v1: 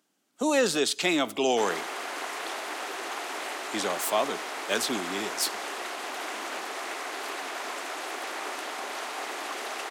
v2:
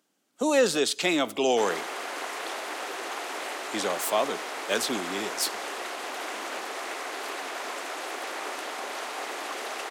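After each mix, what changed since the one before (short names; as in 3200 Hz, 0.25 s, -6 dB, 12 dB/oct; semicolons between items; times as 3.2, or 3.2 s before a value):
master: add bell 510 Hz +3.5 dB 0.36 oct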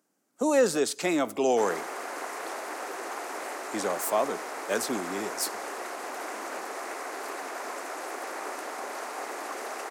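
master: add bell 3300 Hz -11.5 dB 0.96 oct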